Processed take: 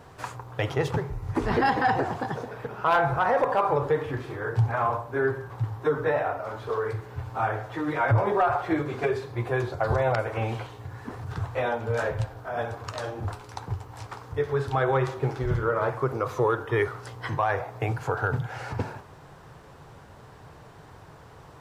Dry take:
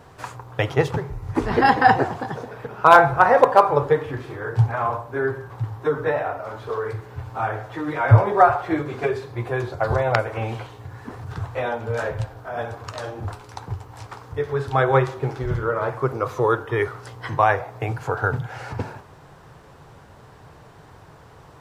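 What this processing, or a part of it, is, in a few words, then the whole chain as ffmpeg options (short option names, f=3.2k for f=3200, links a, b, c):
soft clipper into limiter: -af "asoftclip=type=tanh:threshold=-4dB,alimiter=limit=-13dB:level=0:latency=1:release=74,volume=-1.5dB"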